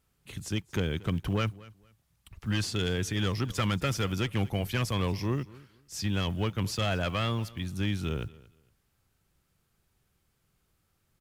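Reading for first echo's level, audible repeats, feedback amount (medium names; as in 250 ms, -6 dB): -21.0 dB, 2, 22%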